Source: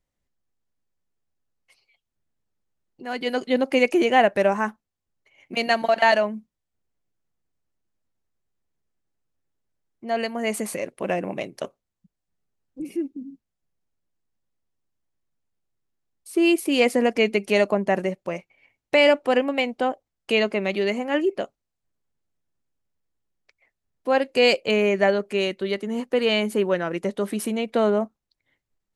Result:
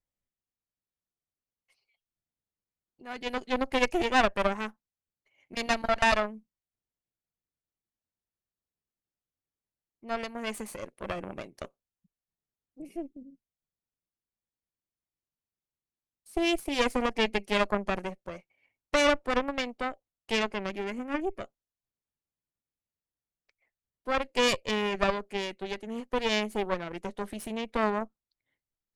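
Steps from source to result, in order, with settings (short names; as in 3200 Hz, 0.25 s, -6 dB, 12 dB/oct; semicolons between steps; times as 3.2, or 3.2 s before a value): added harmonics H 3 -24 dB, 4 -9 dB, 7 -31 dB, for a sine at -5 dBFS; 20.69–21.41 ten-band EQ 125 Hz -11 dB, 250 Hz +6 dB, 500 Hz -3 dB, 1000 Hz -3 dB, 4000 Hz -11 dB; gain -7 dB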